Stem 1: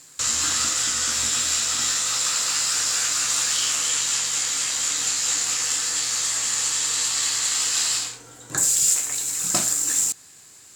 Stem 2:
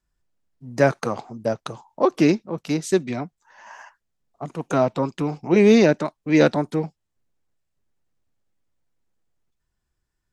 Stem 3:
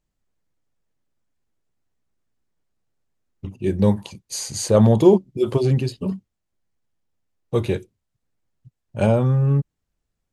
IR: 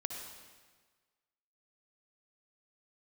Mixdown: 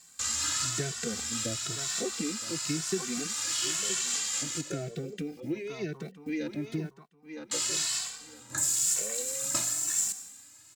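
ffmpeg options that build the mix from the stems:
-filter_complex "[0:a]equalizer=f=440:w=2.2:g=-8.5,volume=-8.5dB,asplit=3[a][b][c];[a]atrim=end=4.61,asetpts=PTS-STARTPTS,afade=t=out:st=4.606:d=0.004:c=hsin[d];[b]atrim=start=4.61:end=7.51,asetpts=PTS-STARTPTS,volume=0[e];[c]atrim=start=7.51,asetpts=PTS-STARTPTS,afade=t=in:d=0.004:c=hsin[f];[d][e][f]concat=n=3:v=0:a=1,asplit=2[g][h];[h]volume=-4dB[i];[1:a]equalizer=f=590:t=o:w=0.34:g=-13.5,acrusher=bits=8:mix=0:aa=0.000001,volume=-1.5dB,asplit=3[j][k][l];[k]volume=-20.5dB[m];[2:a]acompressor=threshold=-22dB:ratio=6,asplit=3[n][o][p];[n]bandpass=f=530:t=q:w=8,volume=0dB[q];[o]bandpass=f=1.84k:t=q:w=8,volume=-6dB[r];[p]bandpass=f=2.48k:t=q:w=8,volume=-9dB[s];[q][r][s]amix=inputs=3:normalize=0,volume=-0.5dB[t];[l]apad=whole_len=474261[u];[g][u]sidechaincompress=threshold=-36dB:ratio=8:attack=5.9:release=390[v];[j][t]amix=inputs=2:normalize=0,asuperstop=centerf=1000:order=4:qfactor=1,acompressor=threshold=-27dB:ratio=10,volume=0dB[w];[3:a]atrim=start_sample=2205[x];[i][x]afir=irnorm=-1:irlink=0[y];[m]aecho=0:1:964|1928|2892|3856:1|0.22|0.0484|0.0106[z];[v][w][y][z]amix=inputs=4:normalize=0,asplit=2[aa][ab];[ab]adelay=2.2,afreqshift=0.99[ac];[aa][ac]amix=inputs=2:normalize=1"

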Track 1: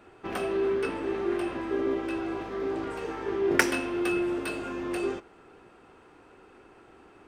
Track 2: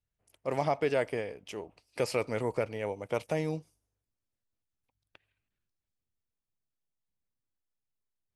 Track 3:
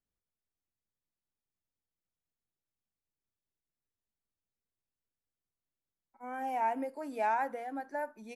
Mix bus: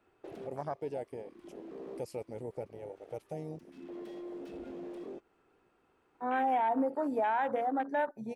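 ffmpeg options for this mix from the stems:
-filter_complex "[0:a]acrossover=split=250|3400[a][b][c];[a]acompressor=threshold=-45dB:ratio=4[d];[b]acompressor=threshold=-37dB:ratio=4[e];[c]acompressor=threshold=-58dB:ratio=4[f];[d][e][f]amix=inputs=3:normalize=0,aeval=exprs='0.015*(abs(mod(val(0)/0.015+3,4)-2)-1)':c=same,volume=0dB[g];[1:a]aemphasis=mode=production:type=75kf,volume=-9dB,asplit=2[h][i];[2:a]bandreject=f=69:t=h:w=4,bandreject=f=138:t=h:w=4,bandreject=f=207:t=h:w=4,bandreject=f=276:t=h:w=4,bandreject=f=345:t=h:w=4,bandreject=f=414:t=h:w=4,bandreject=f=483:t=h:w=4,bandreject=f=552:t=h:w=4,acontrast=70,volume=2.5dB[j];[i]apad=whole_len=320793[k];[g][k]sidechaincompress=threshold=-47dB:ratio=8:attack=29:release=482[l];[l][h][j]amix=inputs=3:normalize=0,afwtdn=0.0178,alimiter=limit=-22.5dB:level=0:latency=1:release=72"

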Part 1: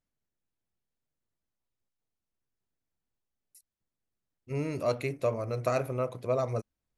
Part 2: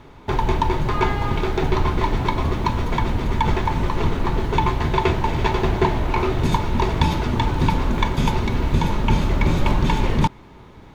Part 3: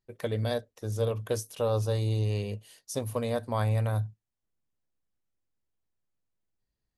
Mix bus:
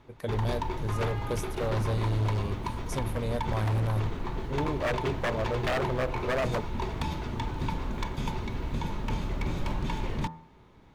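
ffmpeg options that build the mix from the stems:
-filter_complex "[0:a]afwtdn=0.0141,equalizer=f=950:w=0.66:g=4,volume=1.5dB[a];[1:a]bandreject=f=81.41:t=h:w=4,bandreject=f=162.82:t=h:w=4,bandreject=f=244.23:t=h:w=4,bandreject=f=325.64:t=h:w=4,bandreject=f=407.05:t=h:w=4,bandreject=f=488.46:t=h:w=4,bandreject=f=569.87:t=h:w=4,bandreject=f=651.28:t=h:w=4,bandreject=f=732.69:t=h:w=4,bandreject=f=814.1:t=h:w=4,bandreject=f=895.51:t=h:w=4,bandreject=f=976.92:t=h:w=4,bandreject=f=1.05833k:t=h:w=4,bandreject=f=1.13974k:t=h:w=4,bandreject=f=1.22115k:t=h:w=4,bandreject=f=1.30256k:t=h:w=4,bandreject=f=1.38397k:t=h:w=4,bandreject=f=1.46538k:t=h:w=4,bandreject=f=1.54679k:t=h:w=4,bandreject=f=1.6282k:t=h:w=4,bandreject=f=1.70961k:t=h:w=4,bandreject=f=1.79102k:t=h:w=4,bandreject=f=1.87243k:t=h:w=4,volume=-12dB[b];[2:a]lowshelf=f=220:g=6.5,volume=-4dB[c];[a][b][c]amix=inputs=3:normalize=0,aeval=exprs='0.0794*(abs(mod(val(0)/0.0794+3,4)-2)-1)':c=same"

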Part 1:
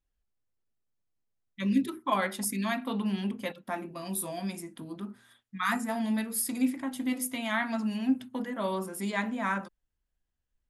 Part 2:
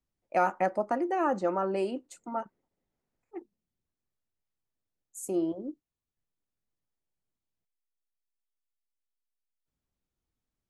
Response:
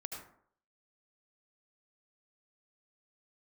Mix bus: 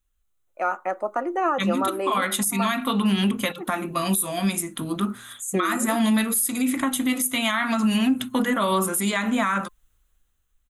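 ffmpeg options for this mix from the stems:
-filter_complex "[0:a]lowshelf=f=84:g=9,alimiter=level_in=0.5dB:limit=-24dB:level=0:latency=1:release=91,volume=-0.5dB,highshelf=f=2.3k:g=11,volume=0.5dB[a];[1:a]highpass=330,adelay=250,volume=-2dB[b];[a][b]amix=inputs=2:normalize=0,superequalizer=10b=2:14b=0.355,dynaudnorm=f=340:g=9:m=16dB,alimiter=limit=-13dB:level=0:latency=1:release=354"

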